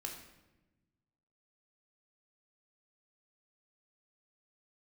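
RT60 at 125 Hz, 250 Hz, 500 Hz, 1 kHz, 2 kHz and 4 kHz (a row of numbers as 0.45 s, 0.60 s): 1.9 s, 1.7 s, 1.2 s, 0.95 s, 0.90 s, 0.75 s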